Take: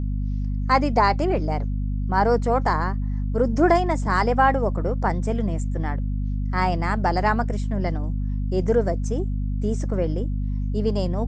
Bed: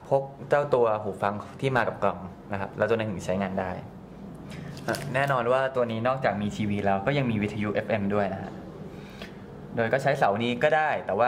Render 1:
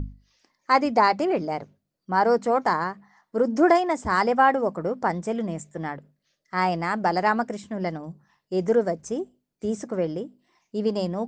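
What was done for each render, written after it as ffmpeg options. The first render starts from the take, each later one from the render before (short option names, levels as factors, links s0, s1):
-af "bandreject=f=50:t=h:w=6,bandreject=f=100:t=h:w=6,bandreject=f=150:t=h:w=6,bandreject=f=200:t=h:w=6,bandreject=f=250:t=h:w=6"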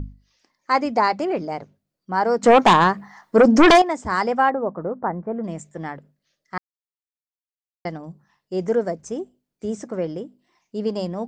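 -filter_complex "[0:a]asettb=1/sr,asplit=3[s0][s1][s2];[s0]atrim=end=2.434[s3];[s1]atrim=start=2.43:end=3.82,asetpts=PTS-STARTPTS,afade=t=in:d=0.004:c=qsin,afade=t=out:st=1.386:d=0.004:c=qsin,aeval=exprs='0.422*sin(PI/2*2.82*val(0)/0.422)':c=same[s4];[s2]atrim=start=3.816[s5];[s3][s4]acrossfade=d=0.004:c1=hsin:c2=qsin[s6];[s6][s5]acrossfade=d=0.004:c1=qsin:c2=hsin,asplit=3[s7][s8][s9];[s7]afade=t=out:st=4.49:d=0.02[s10];[s8]lowpass=f=1500:w=0.5412,lowpass=f=1500:w=1.3066,afade=t=in:st=4.49:d=0.02,afade=t=out:st=5.43:d=0.02[s11];[s9]afade=t=in:st=5.43:d=0.02[s12];[s10][s11][s12]amix=inputs=3:normalize=0,asplit=3[s13][s14][s15];[s13]atrim=end=6.58,asetpts=PTS-STARTPTS,afade=t=out:st=6.576:d=0.004:c=hsin[s16];[s14]atrim=start=6.58:end=7.85,asetpts=PTS-STARTPTS,volume=0[s17];[s15]atrim=start=7.85,asetpts=PTS-STARTPTS,afade=t=in:d=0.004:c=hsin[s18];[s16][s17][s18]concat=n=3:v=0:a=1"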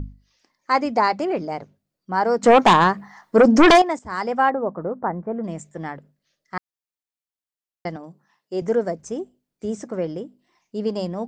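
-filter_complex "[0:a]asettb=1/sr,asplit=3[s0][s1][s2];[s0]atrim=end=7.964[s3];[s1]atrim=start=7.96:end=8.62,asetpts=PTS-STARTPTS,afade=t=in:d=0.004:c=qsin,afade=t=out:st=0.656:d=0.004:c=qsin,highpass=230[s4];[s2]atrim=start=8.616[s5];[s3][s4]acrossfade=d=0.004:c1=hsin:c2=qsin[s6];[s6][s5]acrossfade=d=0.004:c1=qsin:c2=hsin,asplit=2[s7][s8];[s7]atrim=end=3.99,asetpts=PTS-STARTPTS,afade=t=out:st=3.986:d=0.004:c=hsin:silence=0.251189[s9];[s8]atrim=start=3.99,asetpts=PTS-STARTPTS,afade=t=in:d=0.46:silence=0.251189[s10];[s9][s10]concat=n=2:v=0:a=1"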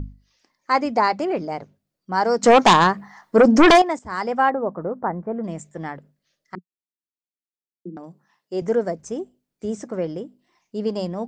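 -filter_complex "[0:a]asettb=1/sr,asplit=3[s0][s1][s2];[s0]atrim=end=2.124[s3];[s1]atrim=start=2.12:end=2.87,asetpts=PTS-STARTPTS,afade=t=in:d=0.004:c=qsin,afade=t=out:st=0.746:d=0.004:c=qsin,equalizer=f=5700:t=o:w=1.2:g=8[s4];[s2]atrim=start=2.866[s5];[s3][s4]acrossfade=d=0.004:c1=hsin:c2=qsin[s6];[s6][s5]acrossfade=d=0.004:c1=qsin:c2=hsin,asettb=1/sr,asplit=3[s7][s8][s9];[s7]atrim=end=6.554[s10];[s8]atrim=start=6.55:end=7.97,asetpts=PTS-STARTPTS,afade=t=in:d=0.004:c=qsin,afade=t=out:st=1.416:d=0.004:c=qsin,asuperpass=centerf=270:order=12:qfactor=1.1[s11];[s9]atrim=start=7.966[s12];[s10][s11]acrossfade=d=0.004:c1=hsin:c2=qsin[s13];[s13][s12]acrossfade=d=0.004:c1=qsin:c2=hsin"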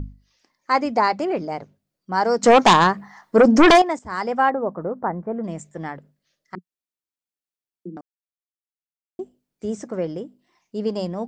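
-filter_complex "[0:a]asplit=3[s0][s1][s2];[s0]atrim=end=8.01,asetpts=PTS-STARTPTS,afade=t=out:st=8.006:d=0.004:c=hsin[s3];[s1]atrim=start=8.01:end=9.19,asetpts=PTS-STARTPTS,volume=0[s4];[s2]atrim=start=9.19,asetpts=PTS-STARTPTS,afade=t=in:d=0.004:c=hsin[s5];[s3][s4][s5]concat=n=3:v=0:a=1"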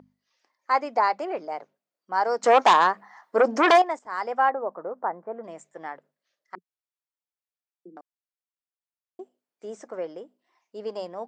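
-af "highpass=610,highshelf=f=2100:g=-10"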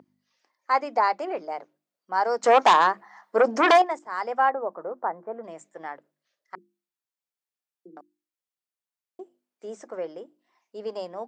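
-af "highpass=110,bandreject=f=50:t=h:w=6,bandreject=f=100:t=h:w=6,bandreject=f=150:t=h:w=6,bandreject=f=200:t=h:w=6,bandreject=f=250:t=h:w=6,bandreject=f=300:t=h:w=6,bandreject=f=350:t=h:w=6"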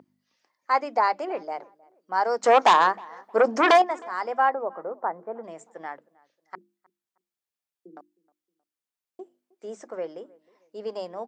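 -filter_complex "[0:a]asplit=2[s0][s1];[s1]adelay=313,lowpass=f=1400:p=1,volume=0.0631,asplit=2[s2][s3];[s3]adelay=313,lowpass=f=1400:p=1,volume=0.36[s4];[s0][s2][s4]amix=inputs=3:normalize=0"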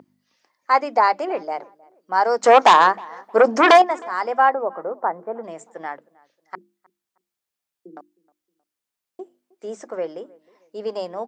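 -af "volume=1.88,alimiter=limit=0.891:level=0:latency=1"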